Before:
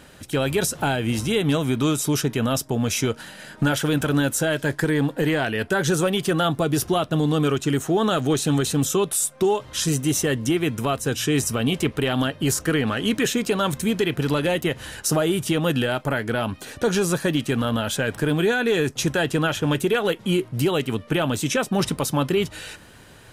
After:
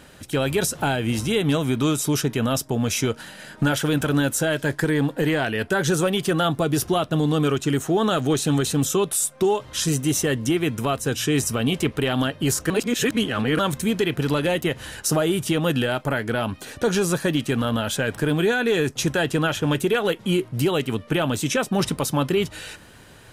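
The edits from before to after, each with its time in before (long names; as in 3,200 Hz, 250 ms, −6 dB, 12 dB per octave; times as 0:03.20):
0:12.70–0:13.59: reverse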